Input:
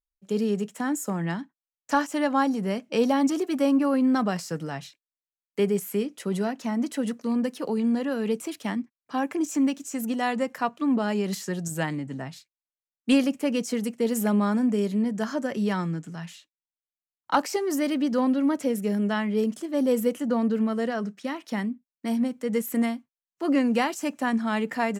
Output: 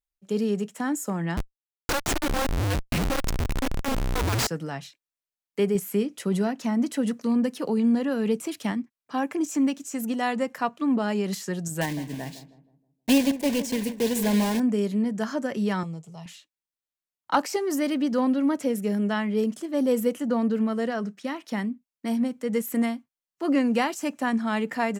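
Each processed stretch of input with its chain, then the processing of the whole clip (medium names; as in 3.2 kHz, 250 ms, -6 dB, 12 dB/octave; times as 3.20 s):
1.37–4.47 s: frequency shift -290 Hz + Schmitt trigger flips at -39 dBFS
5.75–8.72 s: bass shelf 190 Hz +6.5 dB + tape noise reduction on one side only encoder only
11.81–14.60 s: block-companded coder 3-bit + Butterworth band-stop 1.3 kHz, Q 3 + filtered feedback delay 158 ms, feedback 42%, low-pass 1 kHz, level -12 dB
15.83–16.26 s: static phaser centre 660 Hz, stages 4 + tape noise reduction on one side only decoder only
whole clip: none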